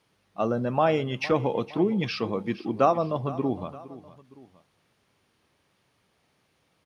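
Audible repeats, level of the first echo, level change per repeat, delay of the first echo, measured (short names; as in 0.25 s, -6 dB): 2, -17.0 dB, -6.5 dB, 0.462 s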